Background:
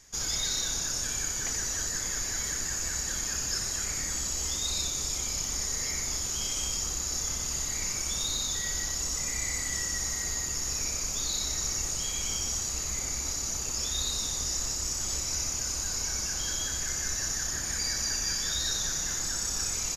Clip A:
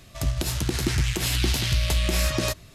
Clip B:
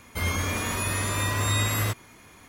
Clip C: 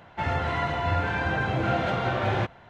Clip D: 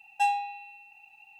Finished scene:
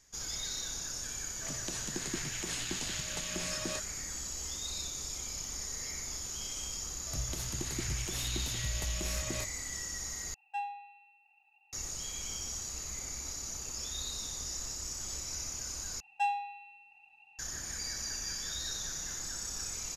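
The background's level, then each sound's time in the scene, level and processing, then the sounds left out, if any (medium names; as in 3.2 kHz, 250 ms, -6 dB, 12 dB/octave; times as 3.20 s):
background -8 dB
1.27 s: add A -11.5 dB + elliptic band-pass 160–9000 Hz
6.92 s: add A -13.5 dB
10.34 s: replace with D -10 dB + band-pass filter 1.3 kHz, Q 0.68
16.00 s: replace with D -5.5 dB + Bessel low-pass 5.8 kHz
not used: B, C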